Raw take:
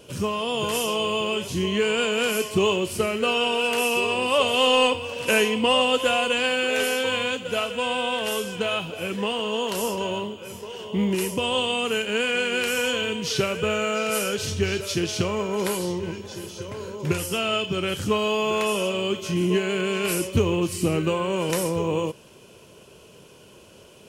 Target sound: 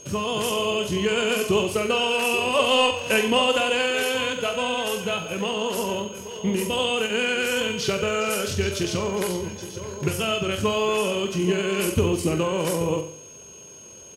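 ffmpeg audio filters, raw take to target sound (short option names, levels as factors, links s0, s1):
-af "aecho=1:1:77|154|231|308|385|462|539:0.355|0.202|0.115|0.0657|0.0375|0.0213|0.0122,aeval=exprs='val(0)+0.00708*sin(2*PI*6500*n/s)':c=same,atempo=1.7"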